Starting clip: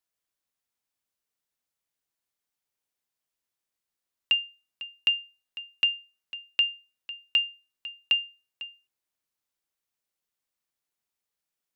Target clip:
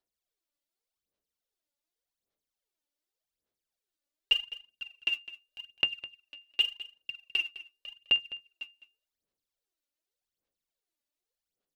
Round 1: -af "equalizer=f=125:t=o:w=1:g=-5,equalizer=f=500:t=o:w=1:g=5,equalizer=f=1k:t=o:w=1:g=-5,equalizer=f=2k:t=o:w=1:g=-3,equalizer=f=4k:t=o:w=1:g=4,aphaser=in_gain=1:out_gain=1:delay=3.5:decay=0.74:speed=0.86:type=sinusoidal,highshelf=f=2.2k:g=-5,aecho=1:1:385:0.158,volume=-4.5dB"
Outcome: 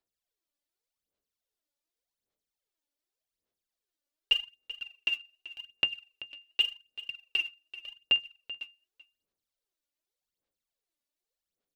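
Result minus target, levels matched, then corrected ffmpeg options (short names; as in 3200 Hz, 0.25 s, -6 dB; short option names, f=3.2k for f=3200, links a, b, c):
echo 0.178 s late
-af "equalizer=f=125:t=o:w=1:g=-5,equalizer=f=500:t=o:w=1:g=5,equalizer=f=1k:t=o:w=1:g=-5,equalizer=f=2k:t=o:w=1:g=-3,equalizer=f=4k:t=o:w=1:g=4,aphaser=in_gain=1:out_gain=1:delay=3.5:decay=0.74:speed=0.86:type=sinusoidal,highshelf=f=2.2k:g=-5,aecho=1:1:207:0.158,volume=-4.5dB"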